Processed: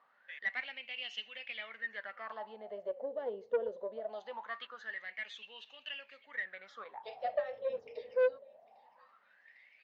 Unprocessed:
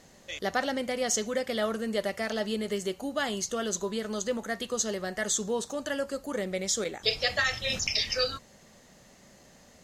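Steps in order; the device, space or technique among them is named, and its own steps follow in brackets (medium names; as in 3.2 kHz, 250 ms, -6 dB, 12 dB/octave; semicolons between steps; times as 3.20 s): 4.09–4.67 s: frequency weighting D; feedback delay 802 ms, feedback 44%, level -24 dB; wah-wah guitar rig (wah-wah 0.22 Hz 470–2800 Hz, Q 15; valve stage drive 33 dB, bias 0.2; cabinet simulation 81–4100 Hz, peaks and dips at 94 Hz -7 dB, 170 Hz -7 dB, 340 Hz -9 dB, 880 Hz +3 dB, 1.3 kHz -4 dB); trim +10.5 dB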